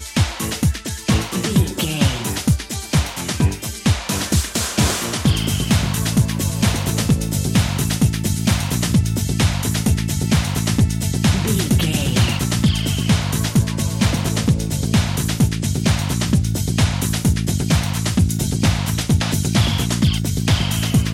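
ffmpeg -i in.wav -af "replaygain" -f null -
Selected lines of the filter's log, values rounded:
track_gain = +0.3 dB
track_peak = 0.347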